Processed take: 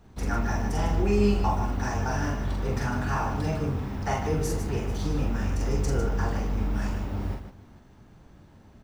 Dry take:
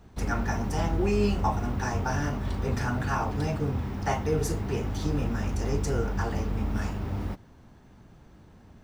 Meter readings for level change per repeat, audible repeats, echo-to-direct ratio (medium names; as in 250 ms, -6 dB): no regular repeats, 3, -1.5 dB